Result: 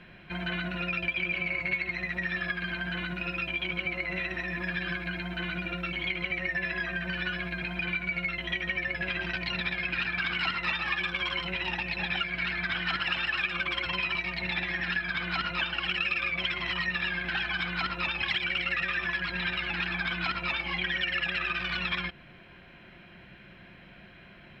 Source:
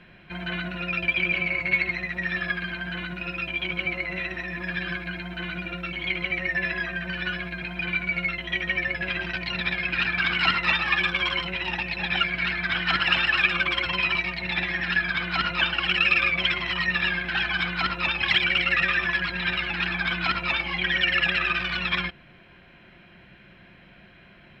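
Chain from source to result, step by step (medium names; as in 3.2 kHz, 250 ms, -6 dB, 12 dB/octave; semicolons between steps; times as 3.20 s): compression 3:1, threshold -29 dBFS, peak gain reduction 10.5 dB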